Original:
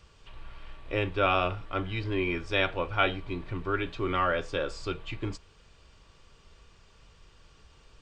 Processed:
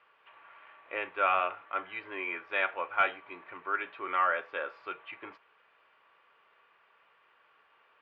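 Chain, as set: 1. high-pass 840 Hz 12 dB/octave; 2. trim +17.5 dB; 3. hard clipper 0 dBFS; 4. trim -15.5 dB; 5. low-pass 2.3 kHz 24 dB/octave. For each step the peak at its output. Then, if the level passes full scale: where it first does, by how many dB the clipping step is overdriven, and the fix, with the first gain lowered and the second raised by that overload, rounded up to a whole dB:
-12.5 dBFS, +5.0 dBFS, 0.0 dBFS, -15.5 dBFS, -14.5 dBFS; step 2, 5.0 dB; step 2 +12.5 dB, step 4 -10.5 dB

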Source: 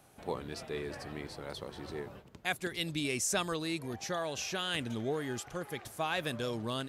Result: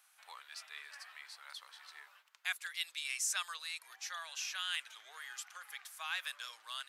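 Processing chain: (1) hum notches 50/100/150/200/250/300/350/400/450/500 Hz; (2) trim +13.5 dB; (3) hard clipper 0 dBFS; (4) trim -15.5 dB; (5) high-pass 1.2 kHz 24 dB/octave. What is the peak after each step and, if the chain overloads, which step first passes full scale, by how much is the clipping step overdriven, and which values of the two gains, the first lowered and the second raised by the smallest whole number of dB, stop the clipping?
-16.5 dBFS, -3.0 dBFS, -3.0 dBFS, -18.5 dBFS, -20.5 dBFS; nothing clips

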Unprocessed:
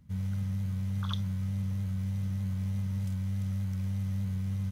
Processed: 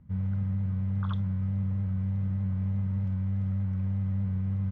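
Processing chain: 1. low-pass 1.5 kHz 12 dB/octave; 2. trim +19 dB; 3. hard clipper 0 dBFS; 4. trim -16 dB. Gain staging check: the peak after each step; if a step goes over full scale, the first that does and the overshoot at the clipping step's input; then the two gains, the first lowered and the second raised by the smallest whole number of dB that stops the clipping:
-23.5 dBFS, -4.5 dBFS, -4.5 dBFS, -20.5 dBFS; nothing clips

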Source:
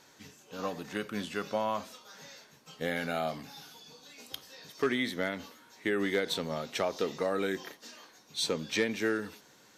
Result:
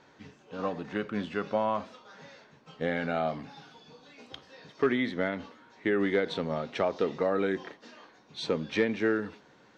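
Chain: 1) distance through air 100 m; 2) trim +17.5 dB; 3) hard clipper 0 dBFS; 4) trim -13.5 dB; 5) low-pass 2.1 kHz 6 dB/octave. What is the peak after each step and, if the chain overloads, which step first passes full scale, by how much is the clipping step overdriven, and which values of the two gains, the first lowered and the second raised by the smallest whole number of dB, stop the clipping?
-20.0 dBFS, -2.5 dBFS, -2.5 dBFS, -16.0 dBFS, -16.0 dBFS; nothing clips

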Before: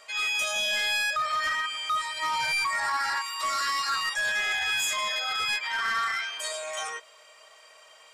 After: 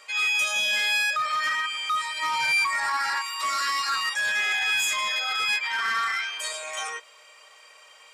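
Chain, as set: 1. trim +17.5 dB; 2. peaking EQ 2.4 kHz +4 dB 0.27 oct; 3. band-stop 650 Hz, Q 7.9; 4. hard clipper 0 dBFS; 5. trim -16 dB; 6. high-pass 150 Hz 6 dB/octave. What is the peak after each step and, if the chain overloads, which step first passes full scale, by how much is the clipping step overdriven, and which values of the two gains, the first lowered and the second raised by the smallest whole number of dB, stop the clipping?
-3.0 dBFS, -1.5 dBFS, -1.5 dBFS, -1.5 dBFS, -17.5 dBFS, -17.0 dBFS; nothing clips

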